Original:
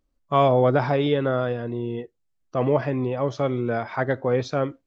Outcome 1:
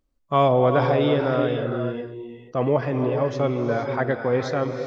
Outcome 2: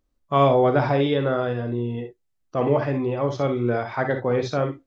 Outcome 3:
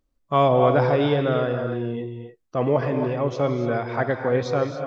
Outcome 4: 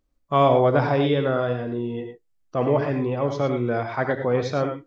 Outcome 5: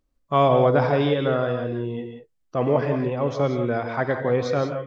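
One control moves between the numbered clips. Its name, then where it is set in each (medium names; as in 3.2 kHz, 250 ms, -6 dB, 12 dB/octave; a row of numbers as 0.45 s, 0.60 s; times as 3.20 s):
gated-style reverb, gate: 500 ms, 80 ms, 310 ms, 130 ms, 210 ms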